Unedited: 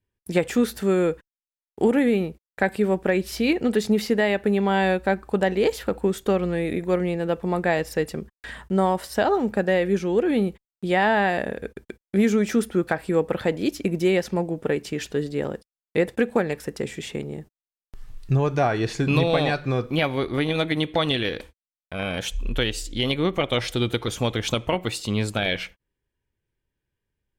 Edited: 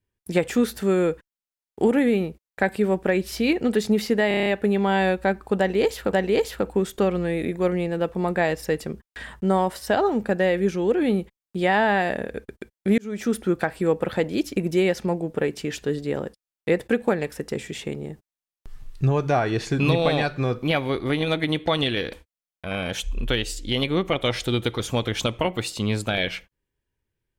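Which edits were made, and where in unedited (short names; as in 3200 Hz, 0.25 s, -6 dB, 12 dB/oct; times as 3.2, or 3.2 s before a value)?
4.28 stutter 0.03 s, 7 plays
5.41–5.95 loop, 2 plays
12.26–12.66 fade in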